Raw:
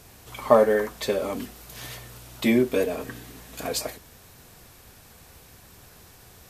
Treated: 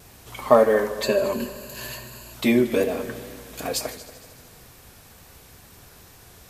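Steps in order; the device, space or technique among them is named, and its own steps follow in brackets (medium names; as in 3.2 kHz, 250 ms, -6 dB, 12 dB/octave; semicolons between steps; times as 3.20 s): multi-head tape echo (multi-head delay 77 ms, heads all three, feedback 55%, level -20 dB; wow and flutter 47 cents); 1.03–2.34 s: rippled EQ curve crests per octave 1.4, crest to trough 13 dB; trim +1.5 dB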